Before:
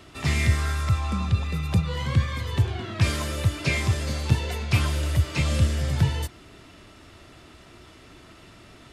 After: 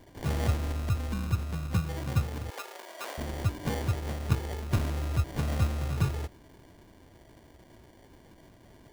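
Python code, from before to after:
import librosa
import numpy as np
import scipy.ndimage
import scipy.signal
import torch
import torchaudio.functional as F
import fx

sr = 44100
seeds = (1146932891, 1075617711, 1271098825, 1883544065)

y = fx.sample_hold(x, sr, seeds[0], rate_hz=1300.0, jitter_pct=0)
y = fx.highpass(y, sr, hz=480.0, slope=24, at=(2.5, 3.18))
y = F.gain(torch.from_numpy(y), -6.0).numpy()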